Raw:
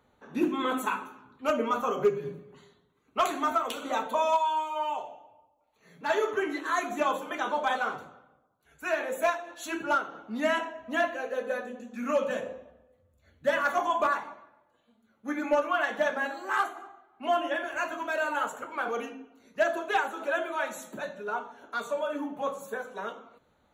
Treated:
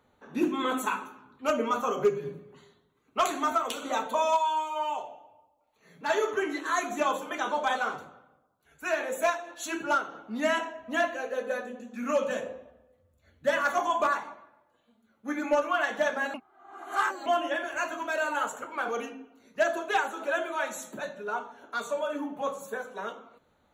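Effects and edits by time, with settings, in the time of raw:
0:16.34–0:17.26: reverse
whole clip: mains-hum notches 60/120/180 Hz; dynamic equaliser 6,700 Hz, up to +5 dB, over −52 dBFS, Q 1

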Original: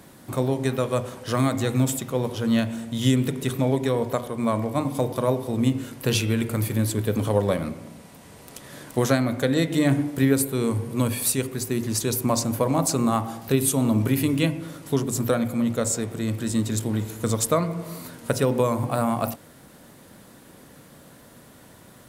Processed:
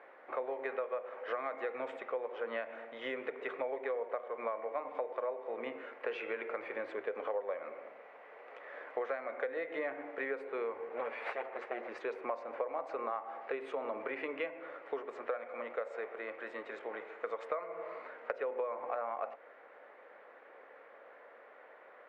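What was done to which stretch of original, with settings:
0:10.89–0:11.89: lower of the sound and its delayed copy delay 8.9 ms
0:15.01–0:17.62: low-shelf EQ 350 Hz −6.5 dB
whole clip: Chebyshev band-pass filter 470–2,200 Hz, order 3; notch filter 970 Hz, Q 16; downward compressor 6 to 1, threshold −33 dBFS; level −1 dB

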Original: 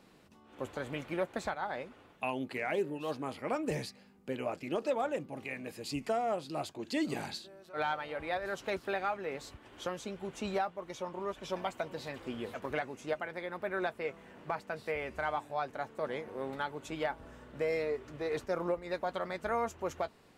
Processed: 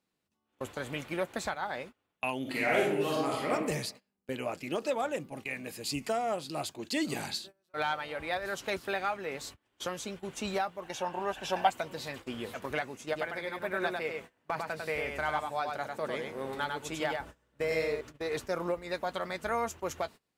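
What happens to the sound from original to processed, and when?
0:02.41–0:03.51: thrown reverb, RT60 0.87 s, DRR −4 dB
0:10.83–0:11.70: hollow resonant body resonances 790/1,600/2,700 Hz, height 14 dB, ringing for 20 ms
0:13.06–0:18.01: single-tap delay 99 ms −4 dB
whole clip: spectral tilt +2.5 dB per octave; noise gate −47 dBFS, range −24 dB; low-shelf EQ 220 Hz +11 dB; level +1 dB

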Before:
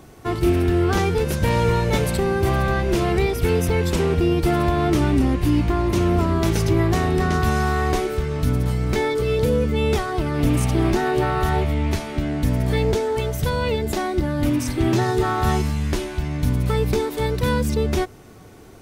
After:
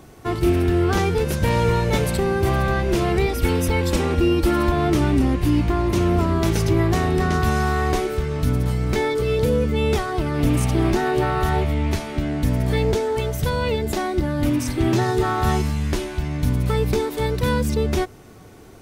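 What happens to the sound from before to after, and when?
0:03.28–0:04.72: comb filter 3.6 ms, depth 63%

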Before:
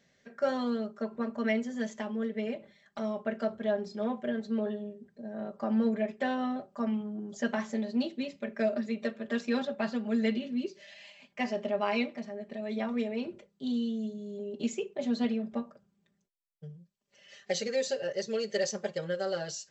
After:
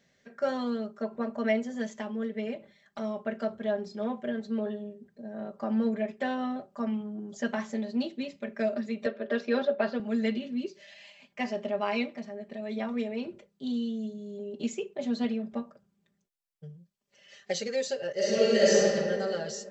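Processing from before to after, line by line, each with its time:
0:01.03–0:01.82: parametric band 670 Hz +5.5 dB
0:09.06–0:10.00: loudspeaker in its box 190–5,200 Hz, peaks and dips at 400 Hz +8 dB, 590 Hz +9 dB, 1,500 Hz +5 dB
0:18.13–0:18.79: thrown reverb, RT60 2.3 s, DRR −10 dB

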